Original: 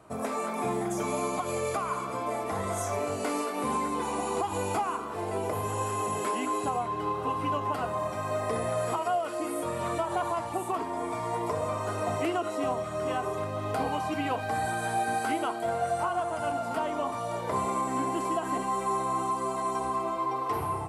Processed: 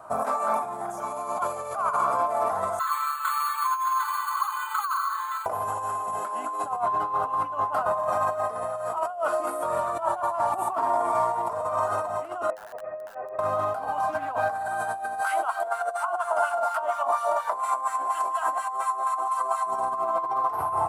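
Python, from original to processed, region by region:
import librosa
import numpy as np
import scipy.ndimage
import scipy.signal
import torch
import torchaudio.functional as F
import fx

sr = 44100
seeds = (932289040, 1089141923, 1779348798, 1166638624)

y = fx.chain(x, sr, fx.ellip_highpass(hz=1100.0, order=4, stop_db=40),
    fx.resample_bad(factor=8, down='filtered', up='hold'),
    fx.comb(ms=4.6, depth=0.81), at=(2.79, 5.46))
y = fx.chain(y, sr, fx.formant_cascade(vowel='e'),
    fx.overflow_wrap(gain_db=34.0),
    fx.over_compress(threshold_db=-45.0, ratio=-0.5), at=(12.5, 13.39))
y = fx.chain(y, sr, fx.notch(hz=3000.0, q=15.0),
    fx.doppler_dist(depth_ms=0.11), at=(14.06, 14.69))
y = fx.filter_lfo_highpass(y, sr, shape='sine', hz=4.2, low_hz=400.0, high_hz=2000.0, q=1.0, at=(15.2, 19.65), fade=0.02)
y = fx.dmg_noise_colour(y, sr, seeds[0], colour='pink', level_db=-66.0, at=(15.2, 19.65), fade=0.02)
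y = fx.high_shelf(y, sr, hz=7100.0, db=10.5)
y = fx.over_compress(y, sr, threshold_db=-33.0, ratio=-0.5)
y = fx.band_shelf(y, sr, hz=950.0, db=15.5, octaves=1.7)
y = F.gain(torch.from_numpy(y), -6.0).numpy()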